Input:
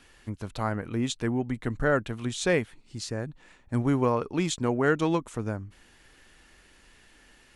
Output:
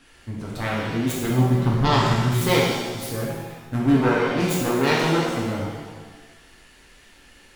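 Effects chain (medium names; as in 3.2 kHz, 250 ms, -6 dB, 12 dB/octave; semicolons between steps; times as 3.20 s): self-modulated delay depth 0.48 ms; 1.30–2.33 s: graphic EQ 125/500/1000/2000/4000 Hz +10/-4/+9/-8/+4 dB; pitch-shifted reverb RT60 1.2 s, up +7 st, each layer -8 dB, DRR -4.5 dB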